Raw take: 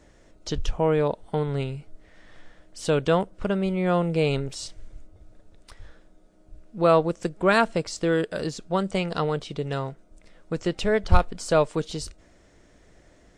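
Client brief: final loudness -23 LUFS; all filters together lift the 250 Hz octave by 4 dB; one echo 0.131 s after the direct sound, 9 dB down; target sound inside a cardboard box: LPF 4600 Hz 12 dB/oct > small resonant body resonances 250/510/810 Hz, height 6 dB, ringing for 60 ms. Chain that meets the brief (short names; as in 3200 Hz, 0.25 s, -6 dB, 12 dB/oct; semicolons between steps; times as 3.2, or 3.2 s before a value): LPF 4600 Hz 12 dB/oct; bell 250 Hz +6.5 dB; echo 0.131 s -9 dB; small resonant body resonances 250/510/810 Hz, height 6 dB, ringing for 60 ms; gain -1.5 dB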